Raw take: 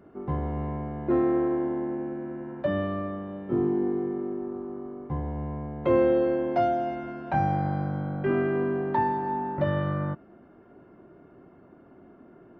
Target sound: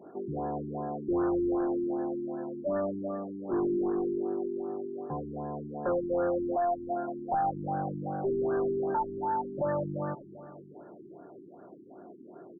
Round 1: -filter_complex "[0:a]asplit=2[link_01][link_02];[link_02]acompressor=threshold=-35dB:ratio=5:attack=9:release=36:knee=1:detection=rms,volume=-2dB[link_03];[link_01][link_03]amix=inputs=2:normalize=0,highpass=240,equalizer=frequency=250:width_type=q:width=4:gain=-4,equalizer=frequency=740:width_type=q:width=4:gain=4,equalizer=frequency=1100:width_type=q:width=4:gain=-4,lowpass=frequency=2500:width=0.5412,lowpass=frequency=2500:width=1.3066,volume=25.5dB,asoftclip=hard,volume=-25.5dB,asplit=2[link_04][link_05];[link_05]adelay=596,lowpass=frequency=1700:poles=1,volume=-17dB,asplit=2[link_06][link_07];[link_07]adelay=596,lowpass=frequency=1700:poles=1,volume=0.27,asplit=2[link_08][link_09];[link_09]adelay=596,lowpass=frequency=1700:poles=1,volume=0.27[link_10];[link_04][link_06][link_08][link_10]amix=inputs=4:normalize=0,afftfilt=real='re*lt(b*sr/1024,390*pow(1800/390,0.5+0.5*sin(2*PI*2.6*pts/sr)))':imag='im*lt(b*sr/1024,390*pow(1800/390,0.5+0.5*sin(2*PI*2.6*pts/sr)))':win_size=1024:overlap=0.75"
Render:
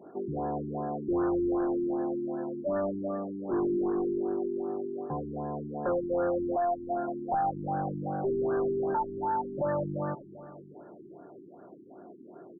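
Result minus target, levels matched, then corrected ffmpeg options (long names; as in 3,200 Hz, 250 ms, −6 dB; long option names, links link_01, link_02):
downward compressor: peak gain reduction −7 dB
-filter_complex "[0:a]asplit=2[link_01][link_02];[link_02]acompressor=threshold=-43.5dB:ratio=5:attack=9:release=36:knee=1:detection=rms,volume=-2dB[link_03];[link_01][link_03]amix=inputs=2:normalize=0,highpass=240,equalizer=frequency=250:width_type=q:width=4:gain=-4,equalizer=frequency=740:width_type=q:width=4:gain=4,equalizer=frequency=1100:width_type=q:width=4:gain=-4,lowpass=frequency=2500:width=0.5412,lowpass=frequency=2500:width=1.3066,volume=25.5dB,asoftclip=hard,volume=-25.5dB,asplit=2[link_04][link_05];[link_05]adelay=596,lowpass=frequency=1700:poles=1,volume=-17dB,asplit=2[link_06][link_07];[link_07]adelay=596,lowpass=frequency=1700:poles=1,volume=0.27,asplit=2[link_08][link_09];[link_09]adelay=596,lowpass=frequency=1700:poles=1,volume=0.27[link_10];[link_04][link_06][link_08][link_10]amix=inputs=4:normalize=0,afftfilt=real='re*lt(b*sr/1024,390*pow(1800/390,0.5+0.5*sin(2*PI*2.6*pts/sr)))':imag='im*lt(b*sr/1024,390*pow(1800/390,0.5+0.5*sin(2*PI*2.6*pts/sr)))':win_size=1024:overlap=0.75"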